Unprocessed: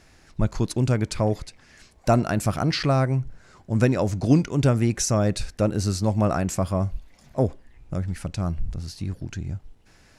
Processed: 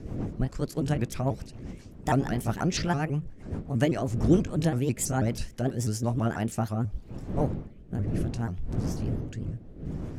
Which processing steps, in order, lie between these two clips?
pitch shifter swept by a sawtooth +5 semitones, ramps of 163 ms
wind on the microphone 210 Hz −32 dBFS
rotating-speaker cabinet horn 7.5 Hz, later 0.65 Hz, at 0:06.08
level −2.5 dB

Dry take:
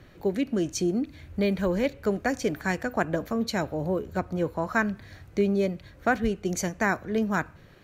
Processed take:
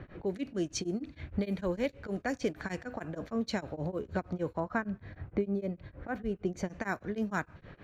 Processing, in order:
low-pass that shuts in the quiet parts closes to 1,900 Hz, open at −20 dBFS
0:04.60–0:06.69: parametric band 7,000 Hz −12.5 dB 3 octaves
downward compressor 2.5 to 1, threshold −39 dBFS, peak gain reduction 13.5 dB
tremolo along a rectified sine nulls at 6.5 Hz
level +6.5 dB

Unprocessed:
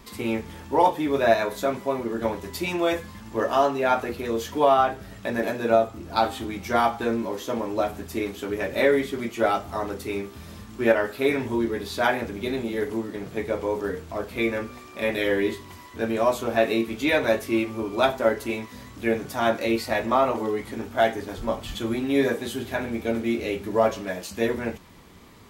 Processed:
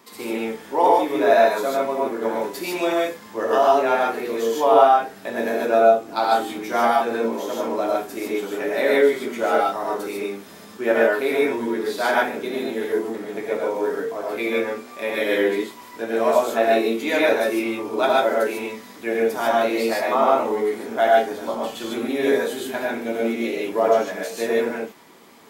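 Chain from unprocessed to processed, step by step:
high-pass filter 310 Hz 12 dB per octave
parametric band 3,500 Hz −3 dB 2.2 octaves
reverb whose tail is shaped and stops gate 170 ms rising, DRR −3 dB

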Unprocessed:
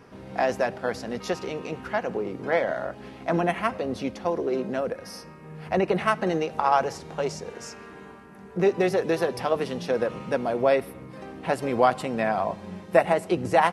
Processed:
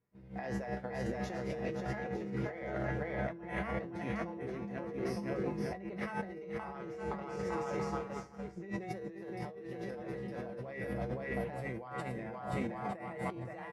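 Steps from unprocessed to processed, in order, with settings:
tilt shelving filter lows +6 dB, about 750 Hz
tuned comb filter 67 Hz, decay 0.43 s, harmonics odd, mix 90%
bouncing-ball delay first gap 520 ms, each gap 0.75×, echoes 5
downward expander −36 dBFS
thirty-one-band graphic EQ 125 Hz +11 dB, 250 Hz −3 dB, 2,000 Hz +11 dB
compressor whose output falls as the input rises −42 dBFS, ratio −1
level +2 dB

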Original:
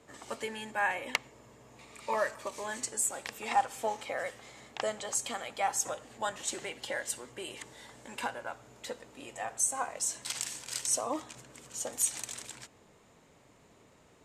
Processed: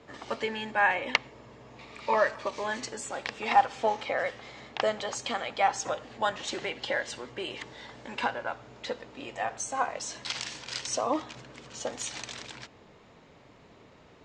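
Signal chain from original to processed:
low-pass filter 5,200 Hz 24 dB per octave
level +6 dB

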